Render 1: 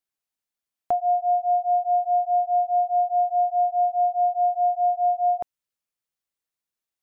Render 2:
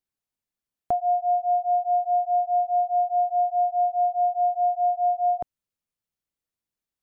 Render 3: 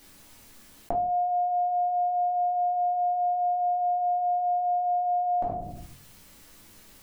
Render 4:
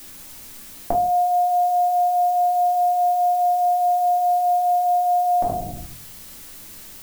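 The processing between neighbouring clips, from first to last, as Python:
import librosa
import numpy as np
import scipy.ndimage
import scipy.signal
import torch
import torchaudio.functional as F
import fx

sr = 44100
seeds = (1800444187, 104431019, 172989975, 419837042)

y1 = fx.low_shelf(x, sr, hz=370.0, db=11.0)
y1 = y1 * 10.0 ** (-3.5 / 20.0)
y2 = fx.room_shoebox(y1, sr, seeds[0], volume_m3=210.0, walls='furnished', distance_m=2.4)
y2 = fx.env_flatten(y2, sr, amount_pct=70)
y2 = y2 * 10.0 ** (-7.0 / 20.0)
y3 = fx.dmg_noise_colour(y2, sr, seeds[1], colour='blue', level_db=-49.0)
y3 = y3 * 10.0 ** (7.0 / 20.0)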